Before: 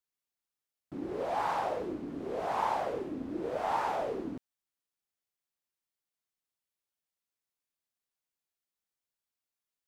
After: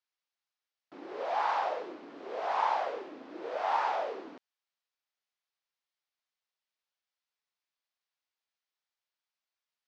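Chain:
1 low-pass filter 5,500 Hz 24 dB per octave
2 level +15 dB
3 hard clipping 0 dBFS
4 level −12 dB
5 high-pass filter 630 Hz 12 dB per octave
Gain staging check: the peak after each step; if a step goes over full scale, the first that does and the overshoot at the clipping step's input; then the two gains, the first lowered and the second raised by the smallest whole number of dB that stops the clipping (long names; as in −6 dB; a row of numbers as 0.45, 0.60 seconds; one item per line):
−19.0, −4.0, −4.0, −16.0, −17.5 dBFS
no step passes full scale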